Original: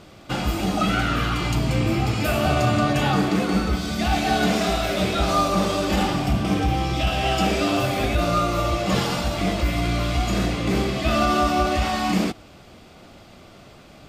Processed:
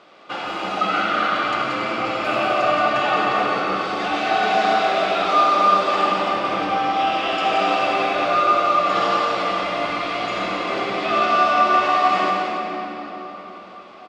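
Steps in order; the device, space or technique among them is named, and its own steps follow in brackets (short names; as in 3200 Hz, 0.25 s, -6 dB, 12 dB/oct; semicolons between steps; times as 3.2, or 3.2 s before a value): station announcement (BPF 480–3600 Hz; bell 1200 Hz +5.5 dB 0.25 oct; loudspeakers at several distances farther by 60 m -9 dB, 96 m -11 dB; reverb RT60 4.5 s, pre-delay 49 ms, DRR -1.5 dB)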